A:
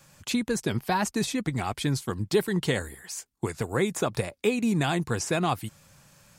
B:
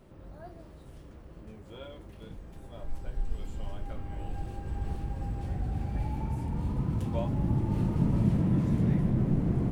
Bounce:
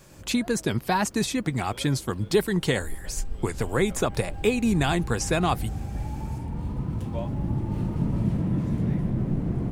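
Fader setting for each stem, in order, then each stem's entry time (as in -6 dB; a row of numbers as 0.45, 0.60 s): +2.0, +0.5 dB; 0.00, 0.00 s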